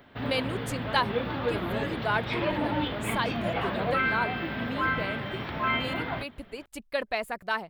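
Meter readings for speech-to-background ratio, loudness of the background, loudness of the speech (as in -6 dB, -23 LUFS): -4.0 dB, -30.0 LUFS, -34.0 LUFS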